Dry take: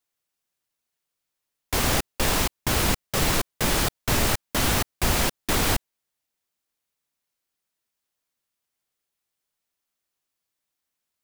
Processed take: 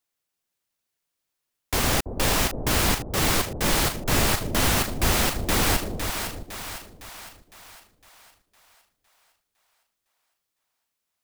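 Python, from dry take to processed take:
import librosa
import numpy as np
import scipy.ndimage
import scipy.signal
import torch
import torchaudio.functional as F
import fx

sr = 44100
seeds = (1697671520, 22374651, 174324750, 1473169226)

p1 = x + fx.echo_split(x, sr, split_hz=660.0, low_ms=331, high_ms=508, feedback_pct=52, wet_db=-6.5, dry=0)
y = fx.band_widen(p1, sr, depth_pct=40, at=(3.03, 4.26))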